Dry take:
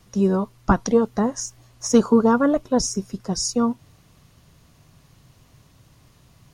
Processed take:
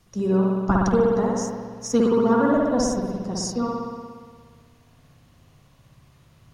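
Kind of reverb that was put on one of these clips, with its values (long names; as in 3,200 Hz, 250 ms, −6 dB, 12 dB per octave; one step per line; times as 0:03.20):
spring reverb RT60 1.7 s, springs 58 ms, chirp 35 ms, DRR −3 dB
level −5.5 dB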